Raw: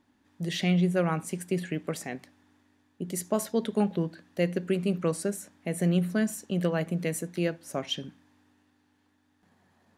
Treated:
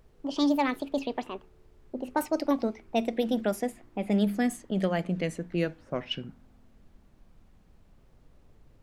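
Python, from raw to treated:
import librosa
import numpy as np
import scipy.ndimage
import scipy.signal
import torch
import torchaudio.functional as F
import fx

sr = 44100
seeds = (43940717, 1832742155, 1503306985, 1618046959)

y = fx.speed_glide(x, sr, from_pct=167, to_pct=59)
y = fx.env_lowpass(y, sr, base_hz=580.0, full_db=-22.5)
y = fx.dmg_noise_colour(y, sr, seeds[0], colour='brown', level_db=-56.0)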